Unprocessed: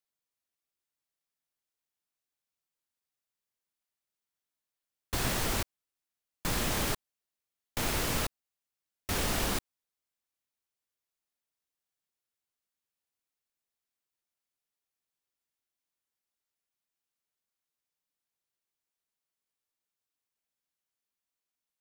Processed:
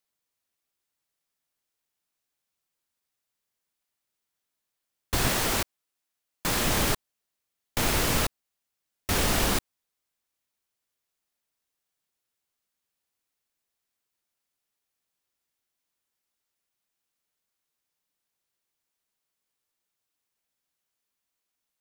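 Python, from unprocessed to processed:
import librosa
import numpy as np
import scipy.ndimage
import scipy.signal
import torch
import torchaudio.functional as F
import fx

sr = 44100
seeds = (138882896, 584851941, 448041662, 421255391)

y = fx.low_shelf(x, sr, hz=160.0, db=-7.0, at=(5.28, 6.65))
y = y * 10.0 ** (6.0 / 20.0)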